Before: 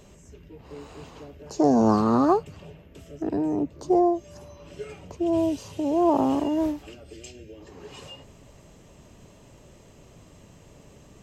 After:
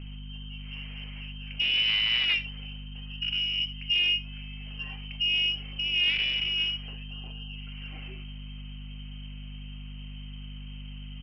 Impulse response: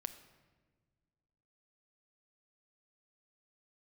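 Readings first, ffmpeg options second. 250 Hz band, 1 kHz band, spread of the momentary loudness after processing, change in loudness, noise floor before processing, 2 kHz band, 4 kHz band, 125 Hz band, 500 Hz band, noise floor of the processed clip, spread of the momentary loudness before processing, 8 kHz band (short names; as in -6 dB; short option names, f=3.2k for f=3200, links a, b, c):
-22.0 dB, under -25 dB, 20 LU, -2.0 dB, -52 dBFS, +18.0 dB, +24.0 dB, -2.5 dB, -31.0 dB, -40 dBFS, 23 LU, under -10 dB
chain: -filter_complex "[0:a]lowpass=f=2.7k:t=q:w=0.5098,lowpass=f=2.7k:t=q:w=0.6013,lowpass=f=2.7k:t=q:w=0.9,lowpass=f=2.7k:t=q:w=2.563,afreqshift=-3200,aeval=exprs='val(0)+0.0141*(sin(2*PI*50*n/s)+sin(2*PI*2*50*n/s)/2+sin(2*PI*3*50*n/s)/3+sin(2*PI*4*50*n/s)/4+sin(2*PI*5*50*n/s)/5)':c=same,aresample=11025,asoftclip=type=tanh:threshold=-21dB,aresample=44100[a];[1:a]atrim=start_sample=2205,atrim=end_sample=4410[b];[a][b]afir=irnorm=-1:irlink=0,acontrast=47,volume=-4.5dB"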